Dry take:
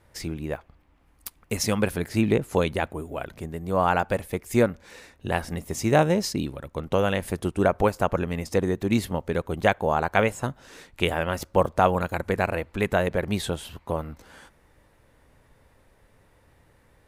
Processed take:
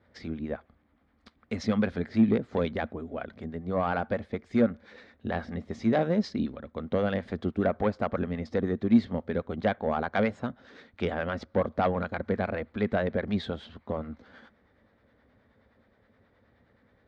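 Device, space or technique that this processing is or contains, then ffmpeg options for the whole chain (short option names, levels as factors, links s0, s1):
guitar amplifier with harmonic tremolo: -filter_complex "[0:a]acrossover=split=630[s0][s1];[s0]aeval=exprs='val(0)*(1-0.5/2+0.5/2*cos(2*PI*9.5*n/s))':c=same[s2];[s1]aeval=exprs='val(0)*(1-0.5/2-0.5/2*cos(2*PI*9.5*n/s))':c=same[s3];[s2][s3]amix=inputs=2:normalize=0,asoftclip=type=tanh:threshold=0.168,highpass=83,equalizer=f=140:t=q:w=4:g=-9,equalizer=f=230:t=q:w=4:g=8,equalizer=f=340:t=q:w=4:g=-4,equalizer=f=940:t=q:w=4:g=-7,equalizer=f=2700:t=q:w=4:g=-10,lowpass=f=3900:w=0.5412,lowpass=f=3900:w=1.3066"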